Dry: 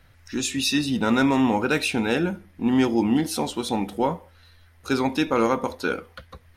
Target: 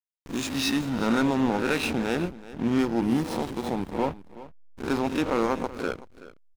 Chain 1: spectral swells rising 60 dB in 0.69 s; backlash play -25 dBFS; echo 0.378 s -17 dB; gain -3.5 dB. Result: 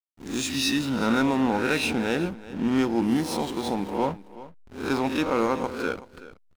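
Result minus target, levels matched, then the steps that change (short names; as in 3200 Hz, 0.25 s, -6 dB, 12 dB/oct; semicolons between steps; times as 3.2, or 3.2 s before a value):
backlash: distortion -7 dB
change: backlash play -18 dBFS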